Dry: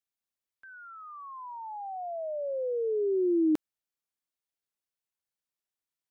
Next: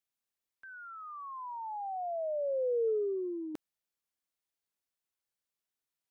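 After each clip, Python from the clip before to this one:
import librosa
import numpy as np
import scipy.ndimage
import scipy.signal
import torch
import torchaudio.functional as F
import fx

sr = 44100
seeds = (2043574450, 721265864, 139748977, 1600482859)

y = fx.over_compress(x, sr, threshold_db=-29.0, ratio=-0.5)
y = F.gain(torch.from_numpy(y), -2.0).numpy()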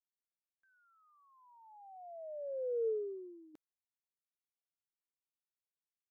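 y = fx.upward_expand(x, sr, threshold_db=-43.0, expansion=2.5)
y = F.gain(torch.from_numpy(y), -3.5).numpy()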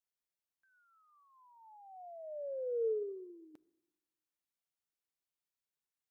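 y = fx.room_shoebox(x, sr, seeds[0], volume_m3=2800.0, walls='furnished', distance_m=0.36)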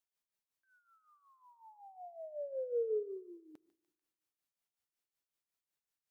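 y = x * (1.0 - 0.72 / 2.0 + 0.72 / 2.0 * np.cos(2.0 * np.pi * 5.4 * (np.arange(len(x)) / sr)))
y = fx.echo_thinned(y, sr, ms=147, feedback_pct=60, hz=810.0, wet_db=-16.0)
y = F.gain(torch.from_numpy(y), 3.0).numpy()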